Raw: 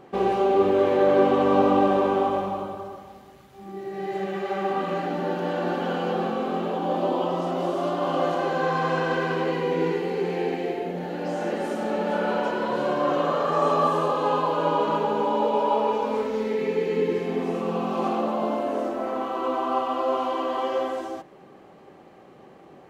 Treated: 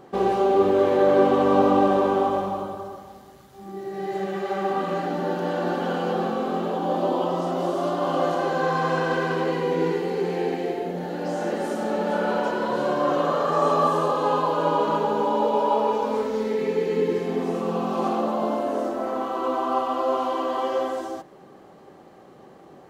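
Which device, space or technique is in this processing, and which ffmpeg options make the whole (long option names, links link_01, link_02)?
exciter from parts: -filter_complex "[0:a]asplit=2[link_01][link_02];[link_02]highpass=frequency=2300:width=0.5412,highpass=frequency=2300:width=1.3066,asoftclip=type=tanh:threshold=-39.5dB,volume=-5dB[link_03];[link_01][link_03]amix=inputs=2:normalize=0,volume=1dB"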